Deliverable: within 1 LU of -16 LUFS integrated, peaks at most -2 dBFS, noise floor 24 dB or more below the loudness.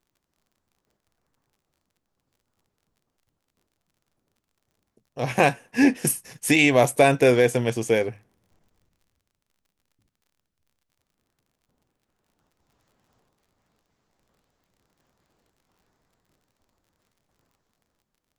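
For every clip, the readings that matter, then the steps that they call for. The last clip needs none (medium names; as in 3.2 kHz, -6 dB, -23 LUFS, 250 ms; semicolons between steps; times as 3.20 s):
tick rate 40 per s; loudness -20.5 LUFS; peak level -4.5 dBFS; loudness target -16.0 LUFS
-> de-click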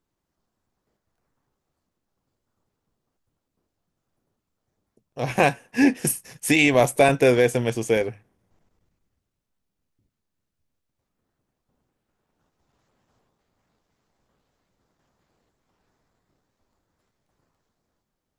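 tick rate 0.054 per s; loudness -20.5 LUFS; peak level -4.5 dBFS; loudness target -16.0 LUFS
-> trim +4.5 dB; peak limiter -2 dBFS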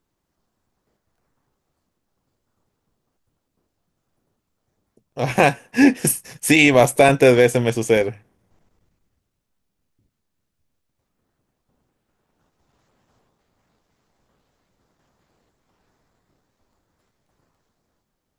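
loudness -16.5 LUFS; peak level -2.0 dBFS; noise floor -77 dBFS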